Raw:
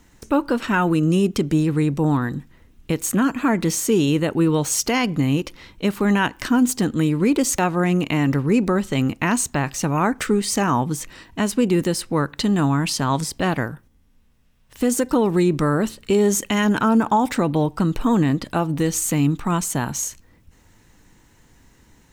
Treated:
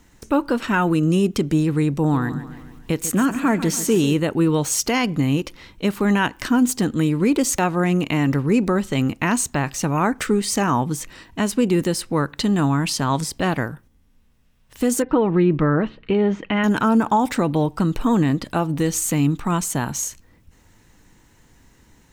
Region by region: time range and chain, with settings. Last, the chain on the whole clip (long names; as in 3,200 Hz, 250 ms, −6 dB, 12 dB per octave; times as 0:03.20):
0:01.99–0:04.14: upward compression, threshold −34 dBFS + repeating echo 143 ms, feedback 52%, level −13 dB
0:15.02–0:16.64: low-pass filter 2,900 Hz 24 dB per octave + comb filter 6.3 ms, depth 30%
whole clip: no processing